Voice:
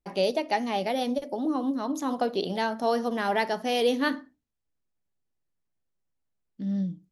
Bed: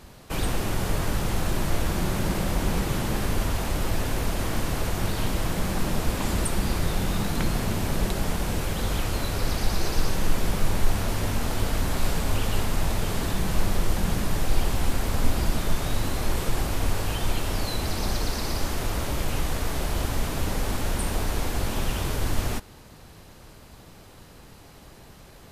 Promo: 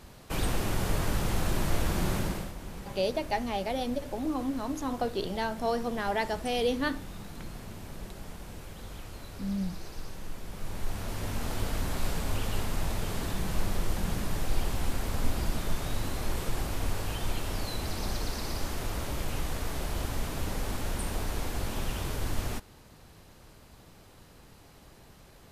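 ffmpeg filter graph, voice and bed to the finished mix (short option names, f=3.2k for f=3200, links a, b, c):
-filter_complex "[0:a]adelay=2800,volume=-4dB[a];[1:a]volume=7.5dB,afade=t=out:st=2.14:d=0.39:silence=0.211349,afade=t=in:st=10.48:d=1.04:silence=0.298538[b];[a][b]amix=inputs=2:normalize=0"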